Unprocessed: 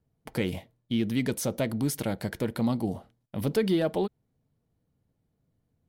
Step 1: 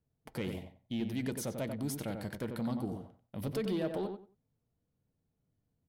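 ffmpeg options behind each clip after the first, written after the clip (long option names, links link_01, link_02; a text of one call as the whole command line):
ffmpeg -i in.wav -filter_complex "[0:a]asoftclip=type=tanh:threshold=-20dB,asplit=2[link_01][link_02];[link_02]adelay=92,lowpass=frequency=2100:poles=1,volume=-5.5dB,asplit=2[link_03][link_04];[link_04]adelay=92,lowpass=frequency=2100:poles=1,volume=0.21,asplit=2[link_05][link_06];[link_06]adelay=92,lowpass=frequency=2100:poles=1,volume=0.21[link_07];[link_03][link_05][link_07]amix=inputs=3:normalize=0[link_08];[link_01][link_08]amix=inputs=2:normalize=0,volume=-7.5dB" out.wav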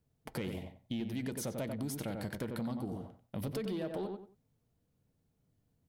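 ffmpeg -i in.wav -af "acompressor=threshold=-40dB:ratio=4,volume=4.5dB" out.wav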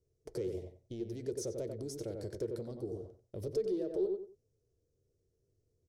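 ffmpeg -i in.wav -af "firequalizer=gain_entry='entry(100,0);entry(170,-12);entry(250,-12);entry(380,10);entry(810,-15);entry(1400,-14);entry(2900,-16);entry(5600,2);entry(13000,-15)':delay=0.05:min_phase=1" out.wav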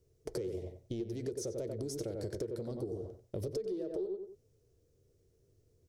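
ffmpeg -i in.wav -af "acompressor=threshold=-43dB:ratio=6,volume=8dB" out.wav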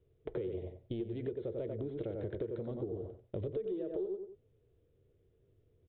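ffmpeg -i in.wav -af "aresample=8000,aresample=44100" out.wav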